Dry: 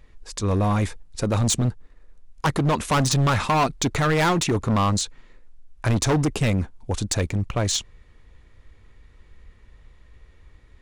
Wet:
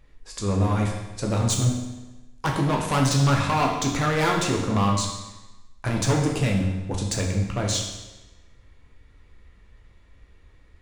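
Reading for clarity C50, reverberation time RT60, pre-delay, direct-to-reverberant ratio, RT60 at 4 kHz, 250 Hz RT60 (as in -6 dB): 4.0 dB, 1.1 s, 11 ms, -0.5 dB, 1.0 s, 1.1 s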